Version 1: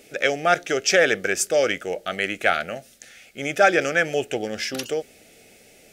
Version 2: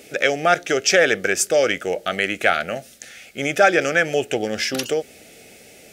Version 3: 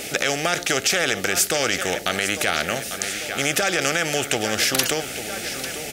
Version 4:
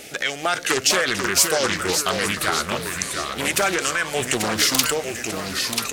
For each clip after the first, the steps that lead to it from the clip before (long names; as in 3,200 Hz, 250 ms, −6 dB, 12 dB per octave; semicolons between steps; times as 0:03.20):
high-pass filter 46 Hz; in parallel at −0.5 dB: downward compressor, threshold −26 dBFS, peak gain reduction 14.5 dB
repeating echo 846 ms, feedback 43%, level −20 dB; boost into a limiter +9.5 dB; every bin compressed towards the loudest bin 2 to 1; level −1 dB
noise reduction from a noise print of the clip's start 11 dB; delay with pitch and tempo change per echo 400 ms, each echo −2 semitones, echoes 3, each echo −6 dB; highs frequency-modulated by the lows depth 0.43 ms; level +3.5 dB